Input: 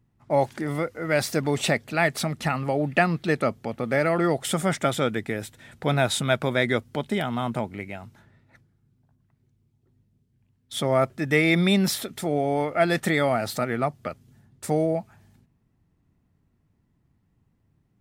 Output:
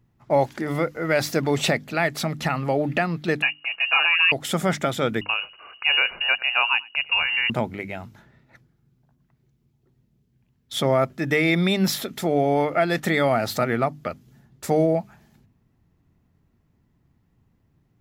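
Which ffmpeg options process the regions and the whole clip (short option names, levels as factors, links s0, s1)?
-filter_complex "[0:a]asettb=1/sr,asplit=3[s0][s1][s2];[s0]atrim=end=3.424[s3];[s1]atrim=start=3.42:end=4.32,asetpts=PTS-STARTPTS,afade=t=in:d=0.004:c=qsin,afade=t=out:st=0.896:d=0.004:c=qsin,aecho=1:1:6:0.71,atrim=end_sample=39690,lowpass=f=2600:t=q:w=0.5098,lowpass=f=2600:t=q:w=0.6013,lowpass=f=2600:t=q:w=0.9,lowpass=f=2600:t=q:w=2.563,afreqshift=-3000[s4];[s2]atrim=start=4.316[s5];[s3][s4]acrossfade=d=0.004:c1=hsin:c2=qsin[s6];[s6][s5]acrossfade=d=0.004:c1=qsin:c2=hsin,asettb=1/sr,asplit=3[s7][s8][s9];[s7]atrim=end=5.214[s10];[s8]atrim=start=5.21:end=7.5,asetpts=PTS-STARTPTS,afade=t=in:d=0.004:c=qsin,afade=t=out:st=2.286:d=0.004:c=qsin,lowpass=f=2600:t=q:w=0.5098,lowpass=f=2600:t=q:w=0.6013,lowpass=f=2600:t=q:w=0.9,lowpass=f=2600:t=q:w=2.563,afreqshift=-3000,aecho=1:1:96:0.0668,atrim=end_sample=100989[s11];[s9]atrim=start=7.496[s12];[s10][s11]acrossfade=d=0.004:c1=hsin:c2=qsin[s13];[s13][s12]acrossfade=d=0.004:c1=qsin:c2=hsin,equalizer=f=8900:t=o:w=0.21:g=-11,bandreject=f=50:t=h:w=6,bandreject=f=100:t=h:w=6,bandreject=f=150:t=h:w=6,bandreject=f=200:t=h:w=6,bandreject=f=250:t=h:w=6,bandreject=f=300:t=h:w=6,alimiter=limit=0.224:level=0:latency=1:release=474,volume=1.58"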